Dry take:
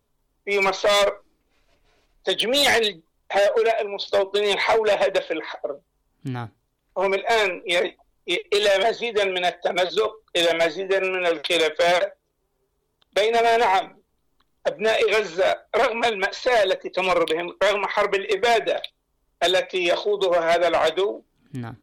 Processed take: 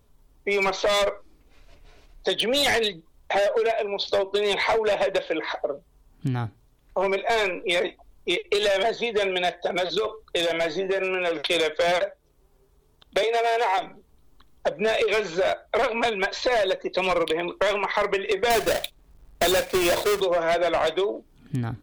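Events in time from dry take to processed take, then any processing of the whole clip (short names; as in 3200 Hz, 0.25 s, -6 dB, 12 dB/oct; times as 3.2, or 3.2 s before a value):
9.57–11.51 compressor 2:1, threshold -24 dBFS
13.23–13.78 HPF 370 Hz 24 dB/oct
18.5–20.21 half-waves squared off
whole clip: low shelf 130 Hz +8.5 dB; compressor 2.5:1, threshold -32 dBFS; gain +6.5 dB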